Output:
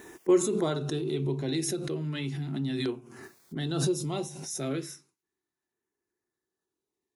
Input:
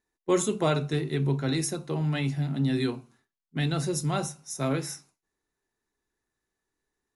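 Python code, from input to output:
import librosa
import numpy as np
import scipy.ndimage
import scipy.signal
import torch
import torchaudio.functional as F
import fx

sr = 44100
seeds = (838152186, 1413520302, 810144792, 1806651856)

y = fx.dynamic_eq(x, sr, hz=3300.0, q=3.0, threshold_db=-52.0, ratio=4.0, max_db=6)
y = scipy.signal.sosfilt(scipy.signal.butter(2, 88.0, 'highpass', fs=sr, output='sos'), y)
y = fx.peak_eq(y, sr, hz=360.0, db=9.5, octaves=0.42)
y = fx.filter_lfo_notch(y, sr, shape='saw_down', hz=0.35, low_hz=390.0, high_hz=4800.0, q=2.3)
y = fx.pre_swell(y, sr, db_per_s=37.0)
y = y * librosa.db_to_amplitude(-6.5)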